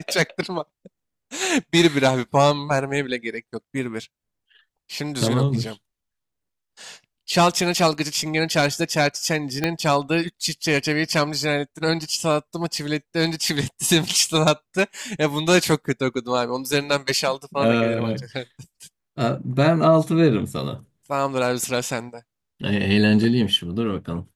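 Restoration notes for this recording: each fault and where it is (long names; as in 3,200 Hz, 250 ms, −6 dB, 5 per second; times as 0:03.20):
0:09.64: click −7 dBFS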